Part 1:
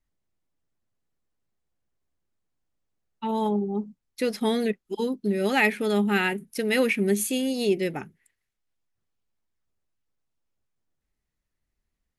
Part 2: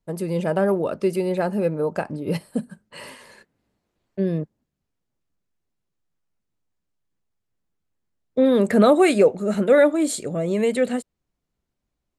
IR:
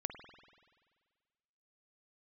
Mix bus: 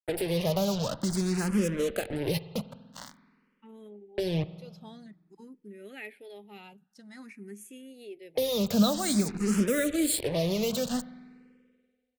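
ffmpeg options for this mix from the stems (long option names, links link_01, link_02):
-filter_complex "[0:a]adelay=400,volume=-20dB,asplit=2[link_01][link_02];[link_02]volume=-23dB[link_03];[1:a]acrusher=bits=4:mix=0:aa=0.5,acrossover=split=180|3000[link_04][link_05][link_06];[link_05]acompressor=threshold=-31dB:ratio=5[link_07];[link_04][link_07][link_06]amix=inputs=3:normalize=0,volume=1dB,asplit=2[link_08][link_09];[link_09]volume=-4.5dB[link_10];[2:a]atrim=start_sample=2205[link_11];[link_03][link_10]amix=inputs=2:normalize=0[link_12];[link_12][link_11]afir=irnorm=-1:irlink=0[link_13];[link_01][link_08][link_13]amix=inputs=3:normalize=0,asplit=2[link_14][link_15];[link_15]afreqshift=0.5[link_16];[link_14][link_16]amix=inputs=2:normalize=1"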